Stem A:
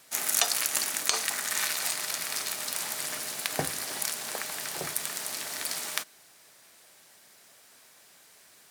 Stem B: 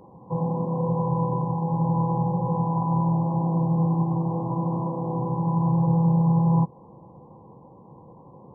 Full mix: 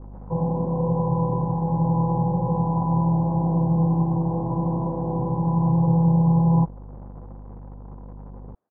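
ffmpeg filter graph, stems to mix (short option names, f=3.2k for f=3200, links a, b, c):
-filter_complex "[0:a]acompressor=threshold=-32dB:ratio=6,adelay=50,volume=-13.5dB[a];[1:a]acrusher=bits=8:dc=4:mix=0:aa=0.000001,aeval=exprs='val(0)+0.01*(sin(2*PI*50*n/s)+sin(2*PI*2*50*n/s)/2+sin(2*PI*3*50*n/s)/3+sin(2*PI*4*50*n/s)/4+sin(2*PI*5*50*n/s)/5)':c=same,volume=2dB[b];[a][b]amix=inputs=2:normalize=0,lowpass=f=1k:w=0.5412,lowpass=f=1k:w=1.3066"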